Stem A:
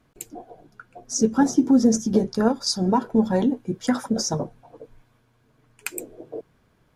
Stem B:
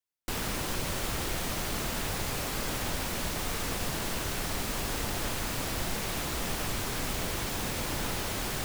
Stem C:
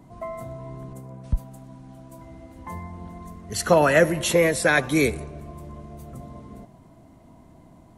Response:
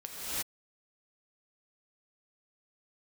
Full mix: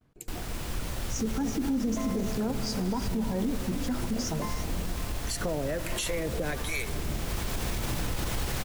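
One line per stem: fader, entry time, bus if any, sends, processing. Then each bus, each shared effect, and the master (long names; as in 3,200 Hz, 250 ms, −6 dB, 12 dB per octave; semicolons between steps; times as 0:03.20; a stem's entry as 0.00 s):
−9.0 dB, 0.00 s, send −12.5 dB, low-shelf EQ 320 Hz +7.5 dB; noise gate with hold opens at −51 dBFS
0:07.18 −10.5 dB → 0:07.38 −3.5 dB, 0.00 s, send −4 dB, low-shelf EQ 130 Hz +10.5 dB
+2.0 dB, 1.75 s, no send, downward compressor, threshold −20 dBFS, peak gain reduction 8.5 dB; two-band tremolo in antiphase 1.3 Hz, depth 100%, crossover 630 Hz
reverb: on, pre-delay 3 ms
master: brickwall limiter −21.5 dBFS, peak gain reduction 11.5 dB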